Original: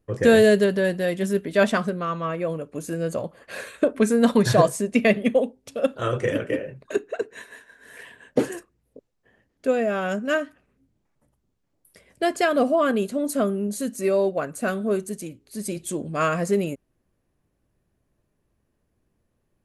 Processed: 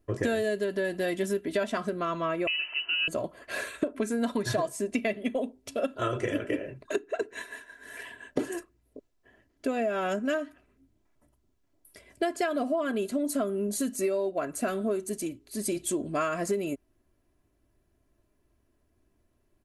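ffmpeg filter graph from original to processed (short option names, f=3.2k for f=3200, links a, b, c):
-filter_complex "[0:a]asettb=1/sr,asplit=3[a][b][c];[a]atrim=end=2.474[d];[b]atrim=start=2.47:end=3.08,asetpts=PTS-STARTPTS,afade=t=in:d=0.004:c=qsin,afade=t=out:st=0.606:d=0.004:c=qsin,aeval=exprs='val(0)+0.5*0.01*sgn(val(0))':c=same,lowpass=f=2.6k:t=q:w=0.5098,lowpass=f=2.6k:t=q:w=0.6013,lowpass=f=2.6k:t=q:w=0.9,lowpass=f=2.6k:t=q:w=2.563,afreqshift=-3100[e];[c]atrim=start=3.076[f];[d][e]acrossfade=d=0.004:c1=hsin:c2=qsin[g];[g][f]acrossfade=d=0.004:c1=qsin:c2=hsin,aecho=1:1:3:0.54,acompressor=threshold=-25dB:ratio=10"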